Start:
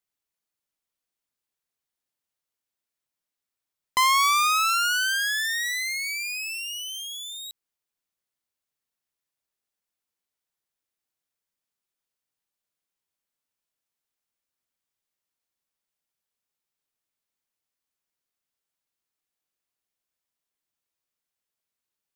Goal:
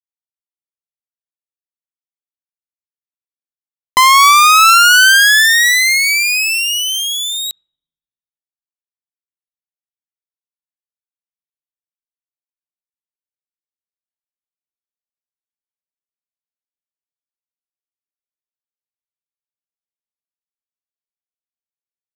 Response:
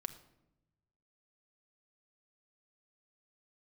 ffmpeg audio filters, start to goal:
-filter_complex "[0:a]acrusher=bits=9:mix=0:aa=0.000001,asplit=2[s0][s1];[1:a]atrim=start_sample=2205,lowpass=2100[s2];[s1][s2]afir=irnorm=-1:irlink=0,volume=0.237[s3];[s0][s3]amix=inputs=2:normalize=0,alimiter=level_in=7.94:limit=0.891:release=50:level=0:latency=1,volume=0.891"

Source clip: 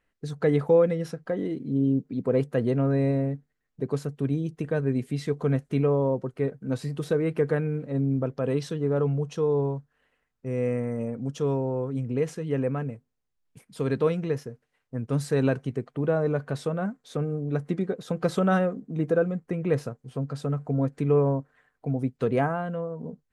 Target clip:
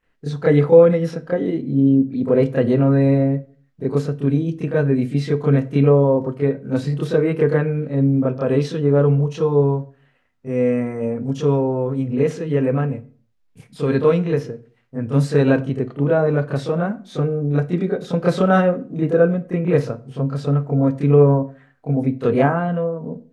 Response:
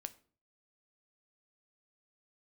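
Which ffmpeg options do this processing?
-filter_complex "[0:a]asplit=2[s0][s1];[1:a]atrim=start_sample=2205,lowpass=5100,adelay=28[s2];[s1][s2]afir=irnorm=-1:irlink=0,volume=4.22[s3];[s0][s3]amix=inputs=2:normalize=0,volume=0.841"

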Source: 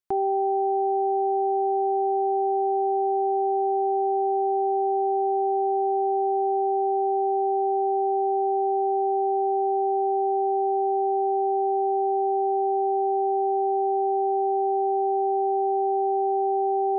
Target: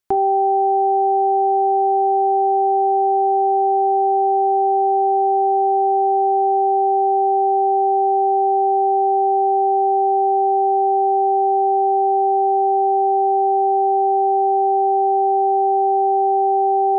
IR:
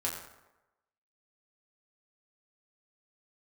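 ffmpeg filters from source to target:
-filter_complex "[0:a]asplit=2[s0][s1];[1:a]atrim=start_sample=2205,atrim=end_sample=3528[s2];[s1][s2]afir=irnorm=-1:irlink=0,volume=0.282[s3];[s0][s3]amix=inputs=2:normalize=0,volume=2"

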